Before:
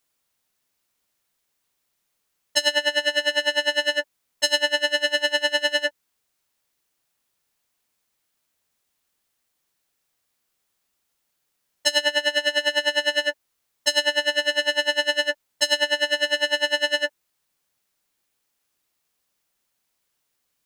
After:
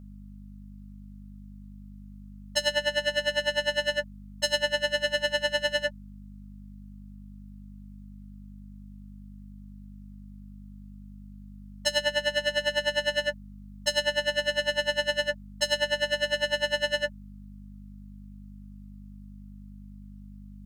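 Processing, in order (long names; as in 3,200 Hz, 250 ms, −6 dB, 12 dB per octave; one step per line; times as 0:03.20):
mains hum 50 Hz, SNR 13 dB
thirty-one-band graphic EQ 200 Hz +10 dB, 315 Hz −7 dB, 630 Hz +6 dB, 1,250 Hz +7 dB
level −6.5 dB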